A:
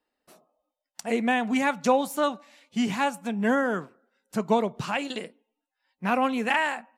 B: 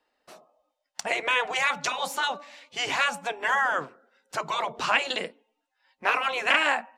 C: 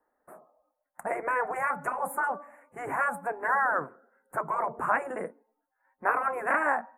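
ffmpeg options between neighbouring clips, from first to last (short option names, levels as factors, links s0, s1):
-filter_complex "[0:a]lowshelf=f=350:g=9.5,afftfilt=real='re*lt(hypot(re,im),0.282)':imag='im*lt(hypot(re,im),0.282)':win_size=1024:overlap=0.75,acrossover=split=500 7400:gain=0.178 1 0.251[s0][s1][s2];[s0][s1][s2]amix=inputs=3:normalize=0,volume=2.37"
-af "asuperstop=centerf=4200:order=8:qfactor=0.54"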